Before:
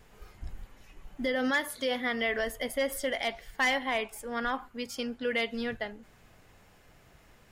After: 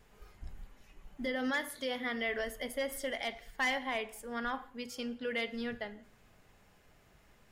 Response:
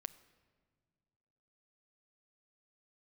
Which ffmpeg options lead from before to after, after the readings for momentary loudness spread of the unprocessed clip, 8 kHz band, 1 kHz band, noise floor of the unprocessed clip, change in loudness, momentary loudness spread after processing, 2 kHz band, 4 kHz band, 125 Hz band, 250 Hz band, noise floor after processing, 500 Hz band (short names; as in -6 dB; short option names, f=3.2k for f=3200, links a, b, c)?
11 LU, -5.5 dB, -5.0 dB, -59 dBFS, -5.0 dB, 12 LU, -5.0 dB, -5.5 dB, -5.5 dB, -4.5 dB, -64 dBFS, -5.5 dB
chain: -filter_complex "[1:a]atrim=start_sample=2205,afade=t=out:st=0.33:d=0.01,atrim=end_sample=14994,asetrate=61740,aresample=44100[a];[0:a][a]afir=irnorm=-1:irlink=0,volume=1.5dB"